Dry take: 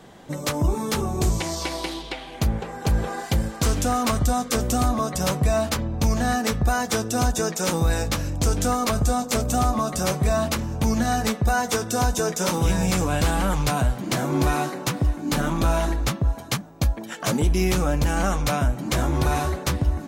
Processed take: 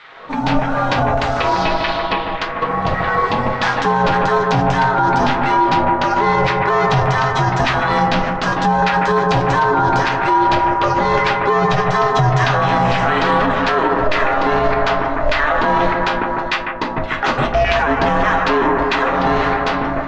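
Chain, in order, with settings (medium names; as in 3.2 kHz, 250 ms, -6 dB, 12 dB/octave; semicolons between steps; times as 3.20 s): low-pass 3.9 kHz 24 dB/octave; LFO high-pass saw down 1.7 Hz 300–1800 Hz; ring modulator 310 Hz; bucket-brigade echo 149 ms, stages 2048, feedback 73%, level -7 dB; reverberation RT60 0.25 s, pre-delay 6 ms, DRR 5.5 dB; loudness maximiser +17.5 dB; trim -5 dB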